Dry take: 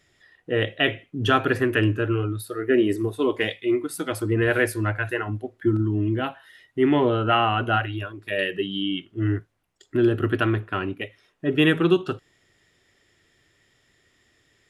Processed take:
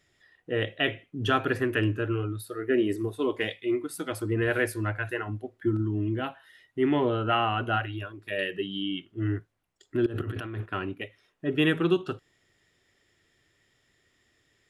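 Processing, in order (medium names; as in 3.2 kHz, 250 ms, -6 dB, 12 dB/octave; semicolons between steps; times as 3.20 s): 10.06–10.66 s: compressor with a negative ratio -29 dBFS, ratio -1; trim -5 dB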